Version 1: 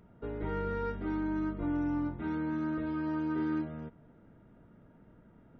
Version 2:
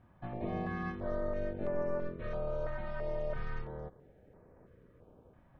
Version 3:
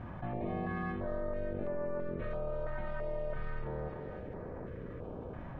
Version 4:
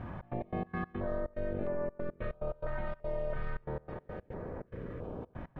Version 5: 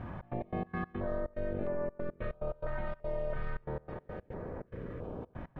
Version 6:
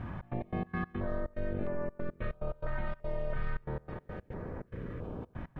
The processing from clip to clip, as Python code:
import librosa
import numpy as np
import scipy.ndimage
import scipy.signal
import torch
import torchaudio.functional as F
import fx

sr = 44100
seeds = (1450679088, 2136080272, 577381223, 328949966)

y1 = x * np.sin(2.0 * np.pi * 290.0 * np.arange(len(x)) / sr)
y1 = fx.filter_held_notch(y1, sr, hz=3.0, low_hz=450.0, high_hz=3400.0)
y1 = y1 * 10.0 ** (2.0 / 20.0)
y2 = scipy.signal.sosfilt(scipy.signal.butter(2, 3300.0, 'lowpass', fs=sr, output='sos'), y1)
y2 = fx.echo_thinned(y2, sr, ms=297, feedback_pct=31, hz=420.0, wet_db=-16.5)
y2 = fx.env_flatten(y2, sr, amount_pct=70)
y2 = y2 * 10.0 ** (-4.0 / 20.0)
y3 = fx.step_gate(y2, sr, bpm=143, pattern='xx.x.x.x.xxx.xxx', floor_db=-24.0, edge_ms=4.5)
y3 = y3 * 10.0 ** (2.0 / 20.0)
y4 = y3
y5 = fx.peak_eq(y4, sr, hz=580.0, db=-5.5, octaves=1.6)
y5 = y5 * 10.0 ** (3.0 / 20.0)